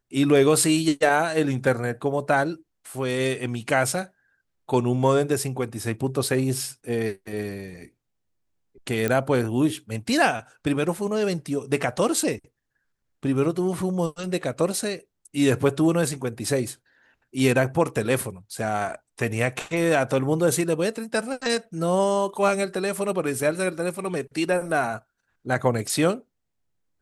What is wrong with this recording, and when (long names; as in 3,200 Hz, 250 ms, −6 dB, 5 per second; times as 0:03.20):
0:09.08: click −11 dBFS